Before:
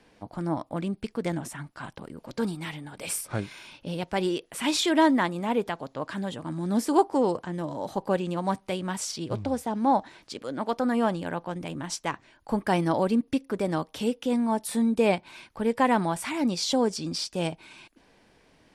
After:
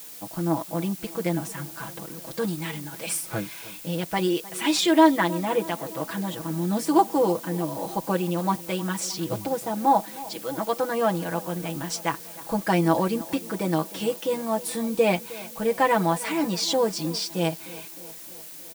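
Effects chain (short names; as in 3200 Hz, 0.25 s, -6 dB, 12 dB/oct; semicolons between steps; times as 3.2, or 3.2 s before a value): low shelf 92 Hz -6.5 dB; comb 6.1 ms, depth 89%; added noise blue -42 dBFS; tape echo 0.309 s, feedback 68%, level -17.5 dB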